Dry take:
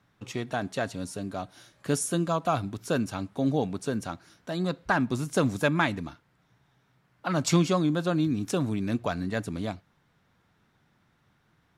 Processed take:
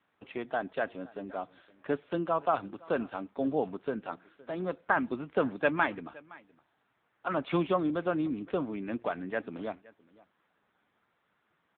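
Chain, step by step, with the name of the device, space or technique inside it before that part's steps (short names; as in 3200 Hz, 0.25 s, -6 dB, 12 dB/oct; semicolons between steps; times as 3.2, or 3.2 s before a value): satellite phone (BPF 320–3200 Hz; echo 0.516 s -22.5 dB; AMR-NB 6.7 kbps 8000 Hz)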